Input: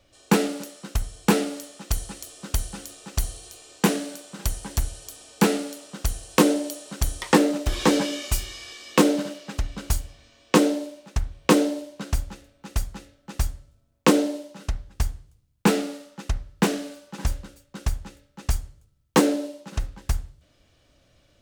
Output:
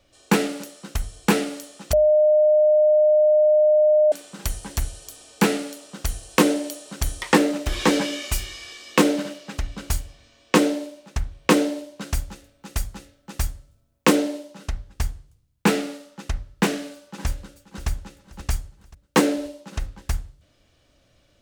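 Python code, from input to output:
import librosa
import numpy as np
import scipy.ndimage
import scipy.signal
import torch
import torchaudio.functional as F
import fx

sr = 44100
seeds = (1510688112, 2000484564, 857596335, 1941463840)

y = fx.high_shelf(x, sr, hz=fx.line((12.0, 5500.0), (14.14, 10000.0)), db=5.0, at=(12.0, 14.14), fade=0.02)
y = fx.echo_throw(y, sr, start_s=16.84, length_s=1.04, ms=530, feedback_pct=45, wet_db=-14.5)
y = fx.edit(y, sr, fx.bleep(start_s=1.93, length_s=2.19, hz=609.0, db=-13.0), tone=tone)
y = fx.hum_notches(y, sr, base_hz=50, count=3)
y = fx.dynamic_eq(y, sr, hz=2100.0, q=1.2, threshold_db=-43.0, ratio=4.0, max_db=4)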